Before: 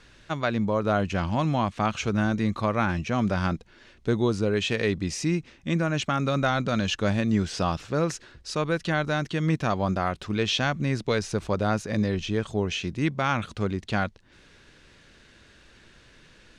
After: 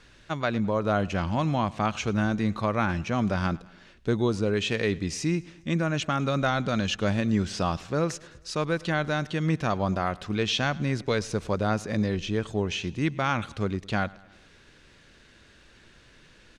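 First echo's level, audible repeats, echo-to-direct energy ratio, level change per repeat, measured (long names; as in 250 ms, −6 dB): −22.5 dB, 3, −21.0 dB, −5.0 dB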